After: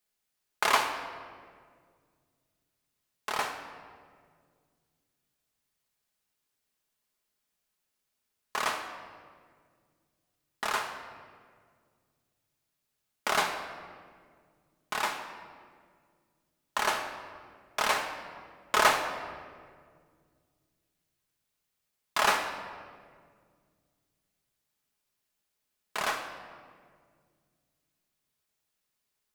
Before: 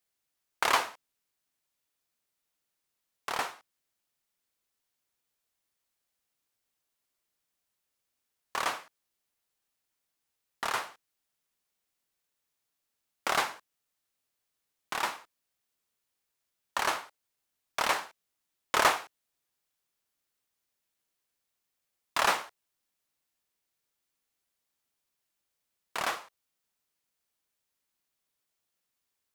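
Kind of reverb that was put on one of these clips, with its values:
rectangular room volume 3,100 cubic metres, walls mixed, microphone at 1.4 metres

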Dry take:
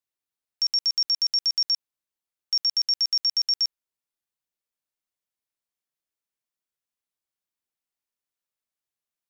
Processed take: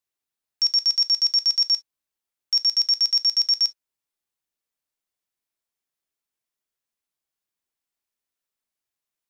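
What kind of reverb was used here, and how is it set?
reverb whose tail is shaped and stops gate 80 ms falling, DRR 10.5 dB
level +2 dB

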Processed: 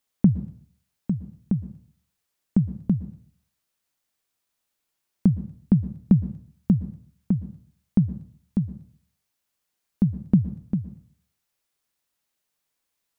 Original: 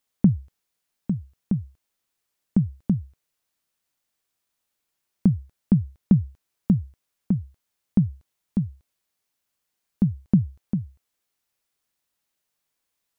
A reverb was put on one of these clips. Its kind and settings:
dense smooth reverb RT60 0.51 s, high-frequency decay 0.9×, pre-delay 105 ms, DRR 15.5 dB

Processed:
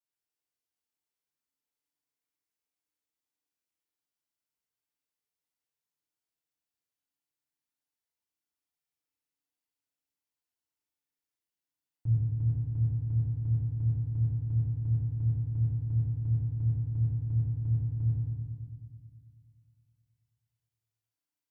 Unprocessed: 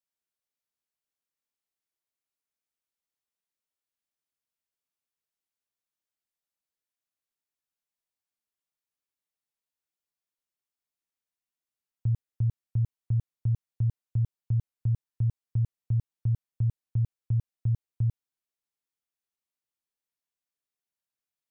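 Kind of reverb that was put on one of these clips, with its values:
feedback delay network reverb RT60 1.8 s, low-frequency decay 1.45×, high-frequency decay 0.95×, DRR −7.5 dB
level −9.5 dB

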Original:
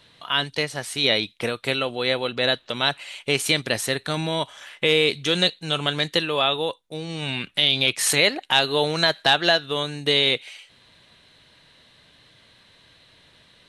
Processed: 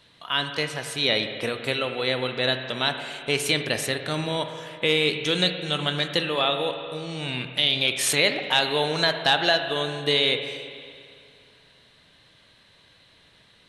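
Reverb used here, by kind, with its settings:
spring reverb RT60 2.3 s, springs 39/55 ms, chirp 70 ms, DRR 6.5 dB
level −2.5 dB

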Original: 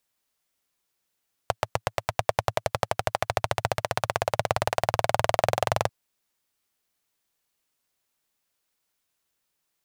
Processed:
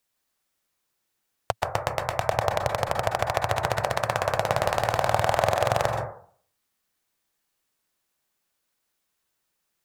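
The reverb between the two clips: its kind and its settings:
dense smooth reverb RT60 0.52 s, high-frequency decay 0.25×, pre-delay 115 ms, DRR 2.5 dB

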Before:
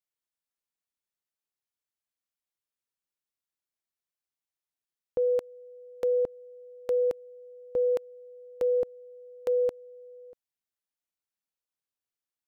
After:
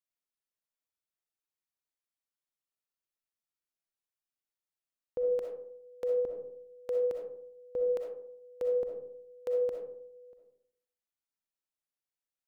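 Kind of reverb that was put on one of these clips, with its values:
comb and all-pass reverb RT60 0.69 s, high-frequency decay 0.35×, pre-delay 20 ms, DRR 1.5 dB
level −6.5 dB

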